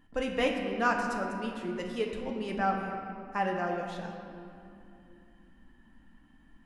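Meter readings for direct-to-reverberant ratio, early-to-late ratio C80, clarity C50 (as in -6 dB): 0.5 dB, 4.5 dB, 3.5 dB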